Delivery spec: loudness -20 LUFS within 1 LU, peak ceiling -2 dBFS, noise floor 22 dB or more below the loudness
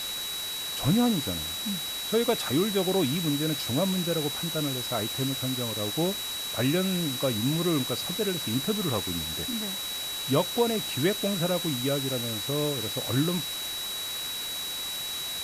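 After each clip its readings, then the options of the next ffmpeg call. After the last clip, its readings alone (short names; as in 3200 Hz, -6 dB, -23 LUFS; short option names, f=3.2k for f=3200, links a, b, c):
steady tone 3900 Hz; tone level -33 dBFS; noise floor -34 dBFS; noise floor target -50 dBFS; loudness -27.5 LUFS; peak -10.5 dBFS; loudness target -20.0 LUFS
-> -af "bandreject=f=3.9k:w=30"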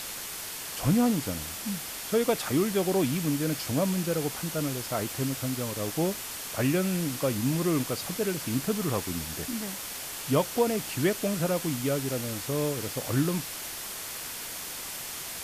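steady tone none; noise floor -38 dBFS; noise floor target -51 dBFS
-> -af "afftdn=nr=13:nf=-38"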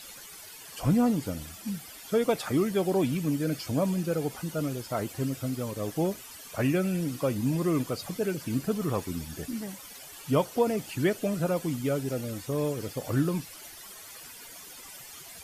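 noise floor -46 dBFS; noise floor target -52 dBFS
-> -af "afftdn=nr=6:nf=-46"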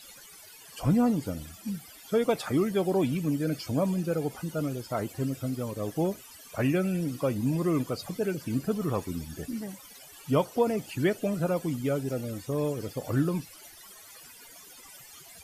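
noise floor -50 dBFS; noise floor target -52 dBFS
-> -af "afftdn=nr=6:nf=-50"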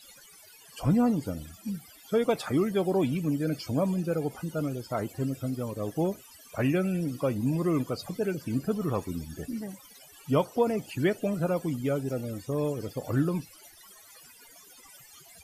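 noise floor -53 dBFS; loudness -29.5 LUFS; peak -12.0 dBFS; loudness target -20.0 LUFS
-> -af "volume=9.5dB"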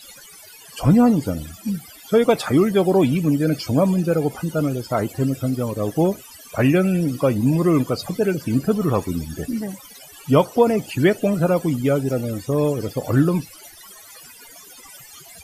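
loudness -20.0 LUFS; peak -2.5 dBFS; noise floor -44 dBFS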